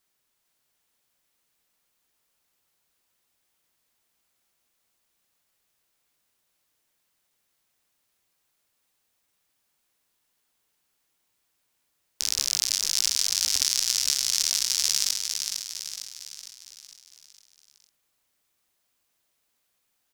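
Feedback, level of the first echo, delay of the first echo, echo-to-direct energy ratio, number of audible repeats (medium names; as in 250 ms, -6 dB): 51%, -5.5 dB, 456 ms, -4.0 dB, 6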